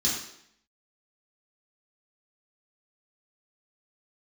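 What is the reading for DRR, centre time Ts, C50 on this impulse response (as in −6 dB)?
−7.5 dB, 47 ms, 3.0 dB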